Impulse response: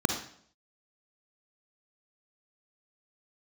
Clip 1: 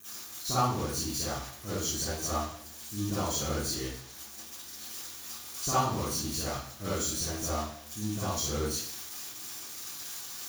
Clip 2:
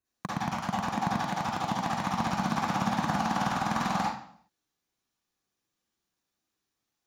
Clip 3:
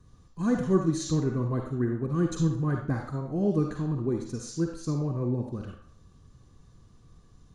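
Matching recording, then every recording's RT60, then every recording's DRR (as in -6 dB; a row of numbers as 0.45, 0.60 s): 3; 0.60, 0.60, 0.60 s; -12.5, -6.0, 3.0 dB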